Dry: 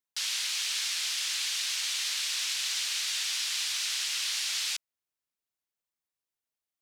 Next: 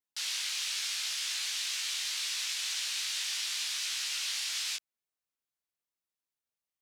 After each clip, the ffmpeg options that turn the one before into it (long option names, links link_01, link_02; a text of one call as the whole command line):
ffmpeg -i in.wav -af "flanger=delay=16.5:depth=4.7:speed=0.79" out.wav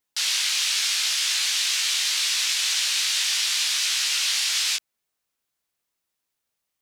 ffmpeg -i in.wav -af "acontrast=62,volume=4.5dB" out.wav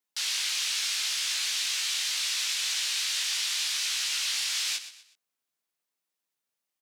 ffmpeg -i in.wav -filter_complex "[0:a]highpass=160,aecho=1:1:123|246|369:0.211|0.0719|0.0244,asplit=2[link_01][link_02];[link_02]asoftclip=type=tanh:threshold=-23dB,volume=-11dB[link_03];[link_01][link_03]amix=inputs=2:normalize=0,volume=-7.5dB" out.wav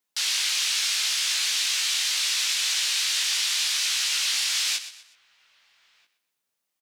ffmpeg -i in.wav -filter_complex "[0:a]asplit=2[link_01][link_02];[link_02]adelay=1283,volume=-24dB,highshelf=frequency=4000:gain=-28.9[link_03];[link_01][link_03]amix=inputs=2:normalize=0,volume=4.5dB" out.wav